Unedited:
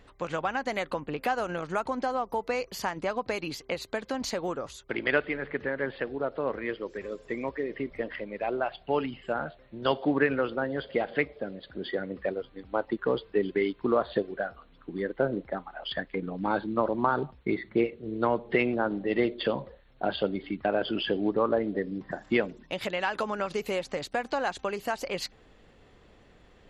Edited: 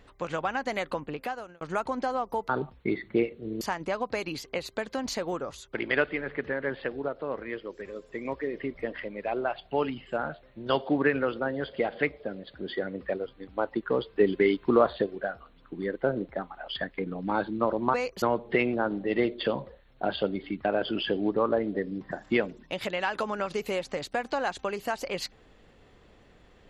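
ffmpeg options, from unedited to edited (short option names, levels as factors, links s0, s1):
-filter_complex "[0:a]asplit=10[s0][s1][s2][s3][s4][s5][s6][s7][s8][s9];[s0]atrim=end=1.61,asetpts=PTS-STARTPTS,afade=t=out:st=1:d=0.61[s10];[s1]atrim=start=1.61:end=2.492,asetpts=PTS-STARTPTS,afade=t=in:d=0.004:c=hsin[s11];[s2]atrim=start=17.098:end=18.222[s12];[s3]atrim=start=2.768:end=6.242[s13];[s4]atrim=start=6.238:end=7.412,asetpts=PTS-STARTPTS,volume=0.708[s14];[s5]atrim=start=7.408:end=13.322[s15];[s6]atrim=start=13.318:end=14.092,asetpts=PTS-STARTPTS,volume=1.58[s16];[s7]atrim=start=14.088:end=17.102[s17];[s8]atrim=start=2.488:end=2.772[s18];[s9]atrim=start=18.218[s19];[s10][s11]concat=n=2:v=0:a=1[s20];[s20][s12]acrossfade=d=0.004:c1=hsin:c2=hsin[s21];[s21][s13]acrossfade=d=0.004:c1=hsin:c2=hsin[s22];[s22][s14]acrossfade=d=0.004:c1=hsin:c2=hsin[s23];[s23][s15]acrossfade=d=0.004:c1=hsin:c2=hsin[s24];[s24][s16]acrossfade=d=0.004:c1=hsin:c2=hsin[s25];[s25][s17]acrossfade=d=0.004:c1=hsin:c2=hsin[s26];[s26][s18]acrossfade=d=0.004:c1=hsin:c2=hsin[s27];[s27][s19]acrossfade=d=0.004:c1=hsin:c2=hsin"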